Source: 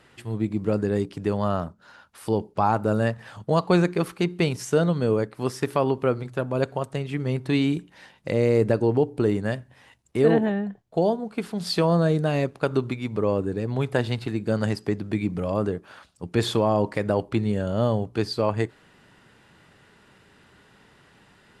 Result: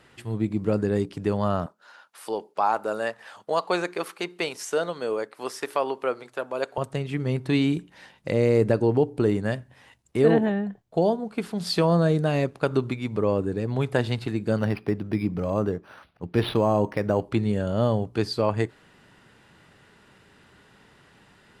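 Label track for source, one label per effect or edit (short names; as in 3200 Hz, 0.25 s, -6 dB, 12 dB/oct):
1.660000	6.780000	HPF 500 Hz
14.580000	17.220000	decimation joined by straight lines rate divided by 6×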